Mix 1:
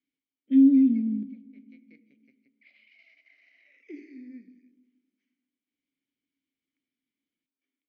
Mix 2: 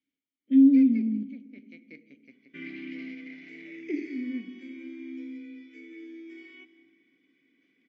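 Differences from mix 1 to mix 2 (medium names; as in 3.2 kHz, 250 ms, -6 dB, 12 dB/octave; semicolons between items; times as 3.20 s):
first sound +11.0 dB; second sound: unmuted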